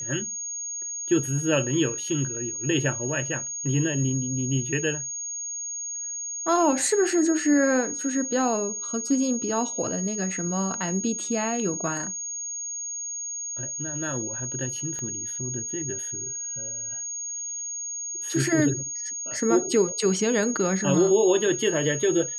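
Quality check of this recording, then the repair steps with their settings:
tone 6600 Hz -30 dBFS
14.99 pop -23 dBFS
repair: de-click; notch 6600 Hz, Q 30

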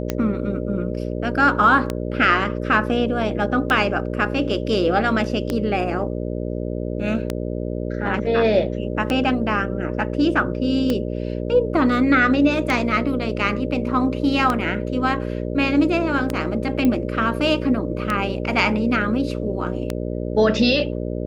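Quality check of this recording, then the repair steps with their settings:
buzz 60 Hz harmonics 10 -26 dBFS
tick 33 1/3 rpm -8 dBFS
16.85 pop -9 dBFS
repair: de-click; de-hum 60 Hz, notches 10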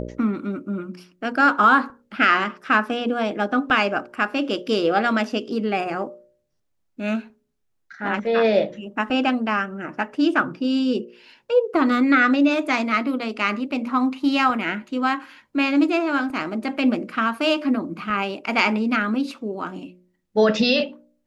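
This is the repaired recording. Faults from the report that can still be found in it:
none

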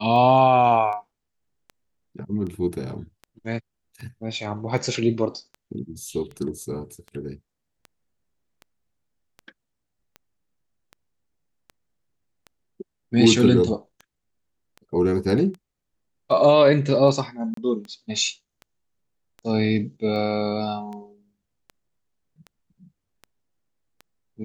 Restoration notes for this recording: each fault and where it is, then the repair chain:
tick 78 rpm -26 dBFS
17.54–17.57 gap 33 ms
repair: de-click; interpolate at 17.54, 33 ms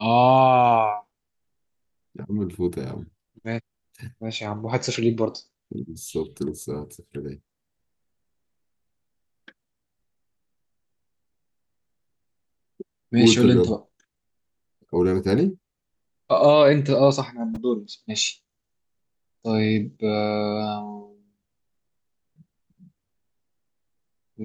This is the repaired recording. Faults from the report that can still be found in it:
none

